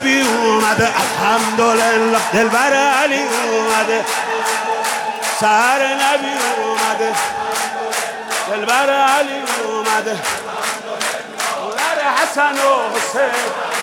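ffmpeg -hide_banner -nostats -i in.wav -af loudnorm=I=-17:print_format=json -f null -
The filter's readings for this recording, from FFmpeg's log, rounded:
"input_i" : "-16.0",
"input_tp" : "-3.3",
"input_lra" : "3.4",
"input_thresh" : "-26.0",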